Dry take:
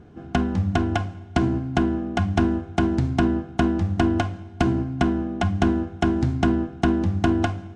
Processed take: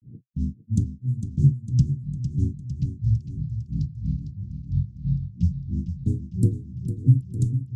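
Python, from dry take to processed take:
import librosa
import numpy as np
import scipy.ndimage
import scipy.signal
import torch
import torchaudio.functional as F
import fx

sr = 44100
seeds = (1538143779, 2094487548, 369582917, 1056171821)

p1 = scipy.signal.sosfilt(scipy.signal.ellip(3, 1.0, 80, [180.0, 5800.0], 'bandstop', fs=sr, output='sos'), x)
p2 = fx.hum_notches(p1, sr, base_hz=50, count=4)
p3 = fx.granulator(p2, sr, seeds[0], grain_ms=225.0, per_s=3.0, spray_ms=33.0, spread_st=7)
p4 = fx.peak_eq(p3, sr, hz=130.0, db=13.0, octaves=0.68)
p5 = fx.env_lowpass(p4, sr, base_hz=1100.0, full_db=-22.5)
p6 = p5 + fx.echo_feedback(p5, sr, ms=454, feedback_pct=58, wet_db=-9.5, dry=0)
y = p6 * 10.0 ** (2.5 / 20.0)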